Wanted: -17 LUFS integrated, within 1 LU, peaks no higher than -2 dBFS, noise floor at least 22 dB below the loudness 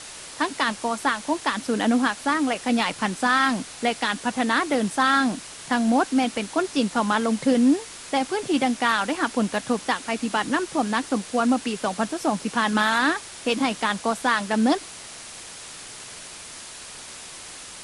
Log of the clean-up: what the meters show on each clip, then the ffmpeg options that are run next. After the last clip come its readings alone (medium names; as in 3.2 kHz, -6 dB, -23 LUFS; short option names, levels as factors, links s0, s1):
noise floor -40 dBFS; noise floor target -46 dBFS; loudness -23.5 LUFS; peak level -7.0 dBFS; loudness target -17.0 LUFS
-> -af "afftdn=nr=6:nf=-40"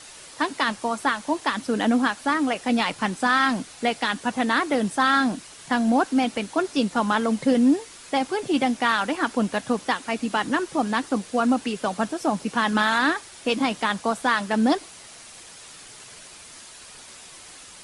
noise floor -45 dBFS; noise floor target -46 dBFS
-> -af "afftdn=nr=6:nf=-45"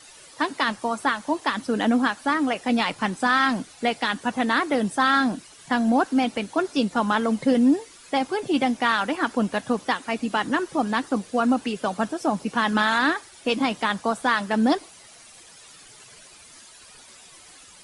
noise floor -49 dBFS; loudness -23.5 LUFS; peak level -7.0 dBFS; loudness target -17.0 LUFS
-> -af "volume=2.11,alimiter=limit=0.794:level=0:latency=1"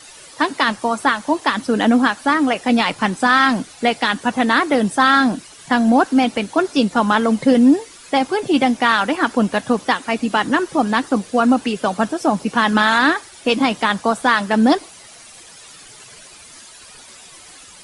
loudness -17.0 LUFS; peak level -2.0 dBFS; noise floor -42 dBFS